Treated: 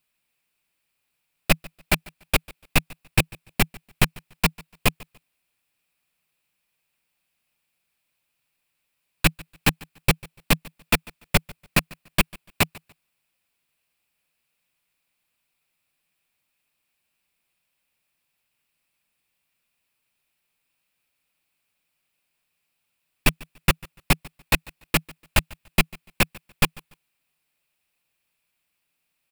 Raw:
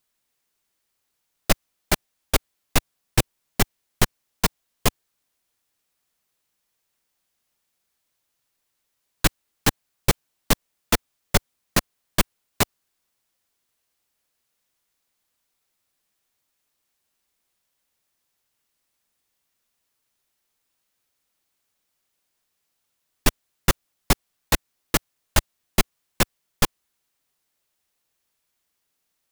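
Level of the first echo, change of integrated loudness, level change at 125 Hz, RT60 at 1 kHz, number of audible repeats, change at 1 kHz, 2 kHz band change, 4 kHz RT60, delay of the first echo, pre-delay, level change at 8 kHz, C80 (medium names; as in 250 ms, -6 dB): -23.5 dB, +0.5 dB, +1.5 dB, no reverb, 1, -1.0 dB, +4.0 dB, no reverb, 145 ms, no reverb, -3.5 dB, no reverb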